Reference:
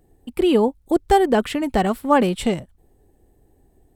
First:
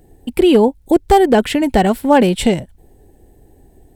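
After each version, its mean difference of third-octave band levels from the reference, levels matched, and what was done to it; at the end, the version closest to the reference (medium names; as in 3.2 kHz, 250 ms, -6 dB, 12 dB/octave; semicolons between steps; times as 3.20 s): 1.5 dB: peaking EQ 1.2 kHz -12 dB 0.22 oct; in parallel at 0 dB: compression 4:1, threshold -27 dBFS, peak gain reduction 14 dB; on the sum: hard clipper -7 dBFS, distortion -23 dB; trim +4 dB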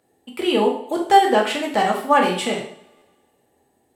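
7.0 dB: frequency weighting A; two-slope reverb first 0.54 s, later 1.8 s, from -25 dB, DRR -1.5 dB; buffer glitch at 2.97 s, samples 512, times 3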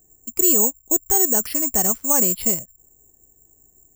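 10.5 dB: peaking EQ 4 kHz -3 dB 0.77 oct; peak limiter -10.5 dBFS, peak gain reduction 6 dB; careless resampling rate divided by 6×, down filtered, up zero stuff; trim -6.5 dB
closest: first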